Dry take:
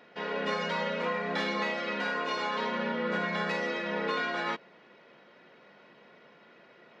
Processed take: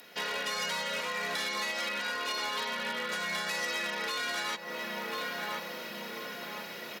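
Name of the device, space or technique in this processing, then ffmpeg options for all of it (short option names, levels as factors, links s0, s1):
FM broadcast chain: -filter_complex "[0:a]asettb=1/sr,asplit=3[s0][s1][s2];[s0]atrim=end=1.894[s3];[s1]atrim=start=1.89:end=3.11,asetpts=PTS-STARTPTS,afade=t=in:d=0.004:c=qsin,afade=t=out:st=1.216:d=0.004:c=qsin,lowpass=5100[s4];[s2]atrim=start=3.106[s5];[s3][s4]acrossfade=d=0.004:c1=hsin:c2=qsin[s6];[s6][s5]acrossfade=d=0.004:c1=qsin:c2=hsin,highpass=52,asplit=2[s7][s8];[s8]adelay=1039,lowpass=f=1200:p=1,volume=0.211,asplit=2[s9][s10];[s10]adelay=1039,lowpass=f=1200:p=1,volume=0.52,asplit=2[s11][s12];[s12]adelay=1039,lowpass=f=1200:p=1,volume=0.52,asplit=2[s13][s14];[s14]adelay=1039,lowpass=f=1200:p=1,volume=0.52,asplit=2[s15][s16];[s16]adelay=1039,lowpass=f=1200:p=1,volume=0.52[s17];[s7][s9][s11][s13][s15][s17]amix=inputs=6:normalize=0,dynaudnorm=f=280:g=3:m=3.76,acrossover=split=610|2400[s18][s19][s20];[s18]acompressor=threshold=0.00708:ratio=4[s21];[s19]acompressor=threshold=0.02:ratio=4[s22];[s20]acompressor=threshold=0.00562:ratio=4[s23];[s21][s22][s23]amix=inputs=3:normalize=0,aemphasis=mode=production:type=75fm,alimiter=level_in=1.19:limit=0.0631:level=0:latency=1:release=202,volume=0.841,asoftclip=type=hard:threshold=0.0335,lowpass=f=15000:w=0.5412,lowpass=f=15000:w=1.3066,aemphasis=mode=production:type=75fm"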